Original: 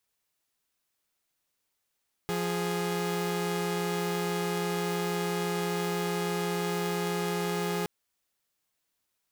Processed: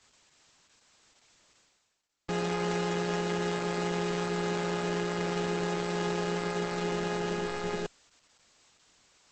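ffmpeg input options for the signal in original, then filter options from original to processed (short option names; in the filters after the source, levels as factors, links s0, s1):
-f lavfi -i "aevalsrc='0.0376*((2*mod(174.61*t,1)-1)+(2*mod(415.3*t,1)-1))':d=5.57:s=44100"
-af "areverse,acompressor=mode=upward:threshold=0.00794:ratio=2.5,areverse" -ar 48000 -c:a libopus -b:a 10k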